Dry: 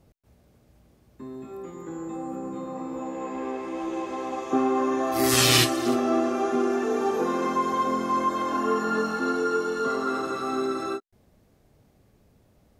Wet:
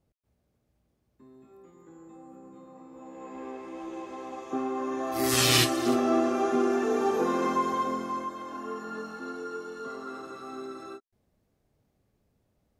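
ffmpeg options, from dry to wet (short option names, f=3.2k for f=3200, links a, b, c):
-af "volume=-1dB,afade=t=in:st=2.92:d=0.49:silence=0.446684,afade=t=in:st=4.78:d=1.18:silence=0.446684,afade=t=out:st=7.49:d=0.85:silence=0.281838"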